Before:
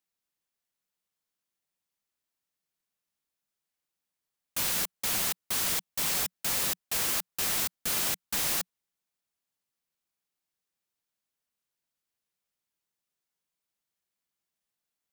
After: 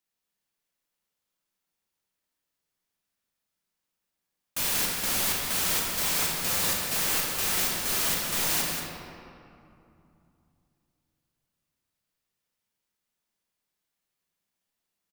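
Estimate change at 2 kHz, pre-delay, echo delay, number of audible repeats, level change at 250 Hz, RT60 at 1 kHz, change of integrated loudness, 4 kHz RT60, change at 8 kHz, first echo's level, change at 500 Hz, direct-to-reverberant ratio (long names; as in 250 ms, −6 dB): +4.5 dB, 32 ms, 185 ms, 1, +5.5 dB, 2.7 s, +3.0 dB, 1.4 s, +2.5 dB, −6.5 dB, +5.0 dB, −2.5 dB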